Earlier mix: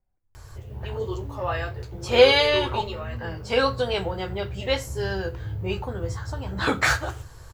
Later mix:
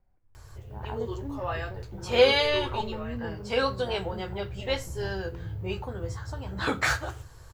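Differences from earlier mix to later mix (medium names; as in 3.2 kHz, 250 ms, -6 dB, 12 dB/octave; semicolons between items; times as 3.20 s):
speech +7.5 dB; background -4.5 dB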